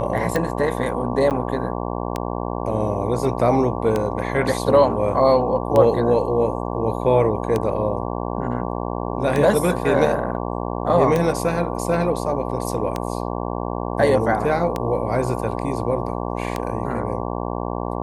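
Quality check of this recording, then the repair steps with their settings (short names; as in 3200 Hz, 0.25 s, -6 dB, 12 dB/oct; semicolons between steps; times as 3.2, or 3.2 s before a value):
buzz 60 Hz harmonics 19 -26 dBFS
tick 33 1/3 rpm -9 dBFS
1.3–1.31 gap 8.9 ms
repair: de-click; de-hum 60 Hz, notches 19; interpolate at 1.3, 8.9 ms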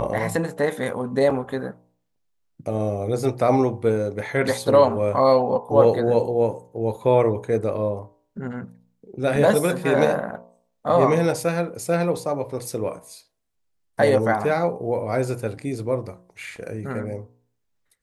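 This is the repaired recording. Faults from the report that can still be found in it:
none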